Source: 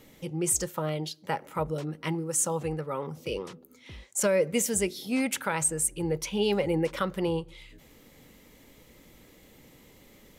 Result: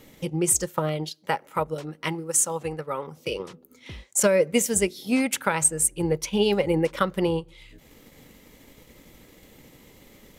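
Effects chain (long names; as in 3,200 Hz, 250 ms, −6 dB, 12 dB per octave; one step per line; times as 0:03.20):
0:01.09–0:03.40: low-shelf EQ 380 Hz −6.5 dB
transient designer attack +4 dB, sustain −5 dB
level +3.5 dB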